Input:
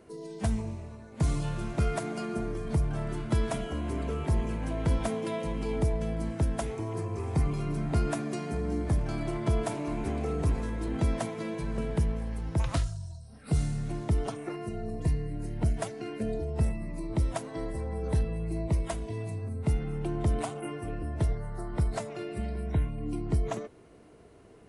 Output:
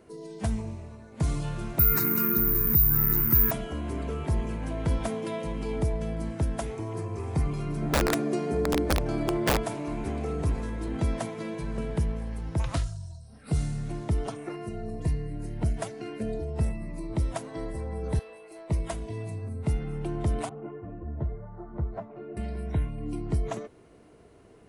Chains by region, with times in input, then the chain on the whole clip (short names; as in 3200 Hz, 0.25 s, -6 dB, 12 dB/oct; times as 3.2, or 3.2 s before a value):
1.79–3.51 fixed phaser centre 1600 Hz, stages 4 + careless resampling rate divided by 3×, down none, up zero stuff + fast leveller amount 50%
7.82–9.57 bell 420 Hz +9 dB 1.5 oct + wrapped overs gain 17 dB
18.19–18.7 HPF 450 Hz 24 dB/oct + tube stage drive 38 dB, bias 0.25 + doubler 22 ms -11 dB
20.49–22.37 LPF 1100 Hz + ensemble effect
whole clip: dry